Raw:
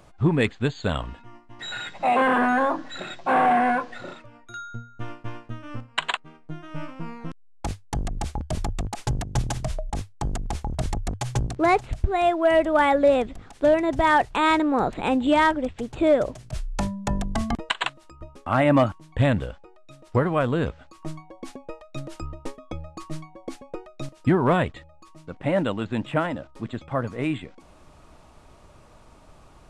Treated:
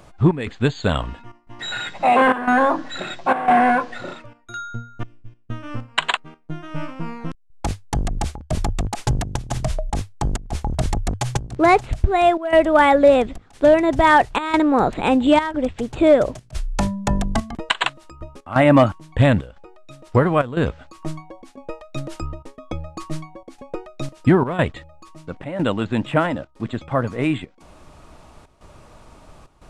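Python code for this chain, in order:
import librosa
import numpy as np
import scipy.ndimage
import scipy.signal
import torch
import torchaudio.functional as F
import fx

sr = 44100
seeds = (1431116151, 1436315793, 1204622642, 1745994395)

y = fx.tone_stack(x, sr, knobs='10-0-1', at=(5.03, 5.5))
y = fx.step_gate(y, sr, bpm=194, pattern='xxxx..xxxxxxx', floor_db=-12.0, edge_ms=4.5)
y = y * librosa.db_to_amplitude(5.5)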